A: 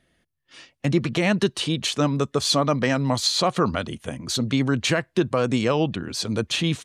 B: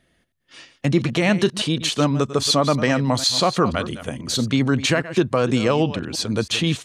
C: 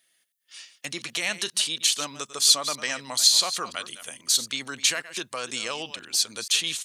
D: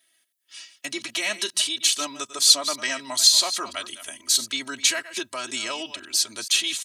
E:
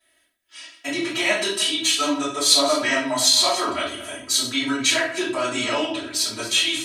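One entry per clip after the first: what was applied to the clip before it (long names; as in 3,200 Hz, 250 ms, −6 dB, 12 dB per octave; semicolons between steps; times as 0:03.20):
delay that plays each chunk backwards 162 ms, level −13.5 dB; level +2.5 dB
first difference; level +6 dB
comb filter 3.1 ms, depth 97%; level −1 dB
high-shelf EQ 3,000 Hz −10.5 dB; rectangular room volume 52 cubic metres, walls mixed, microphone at 3 metres; level −3.5 dB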